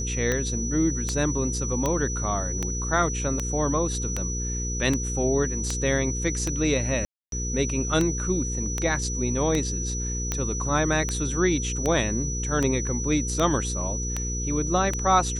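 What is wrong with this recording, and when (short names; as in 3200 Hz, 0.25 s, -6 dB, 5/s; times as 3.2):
hum 60 Hz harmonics 8 -30 dBFS
tick 78 rpm -11 dBFS
tone 5900 Hz -31 dBFS
1.86 pop
7.05–7.32 gap 0.272 s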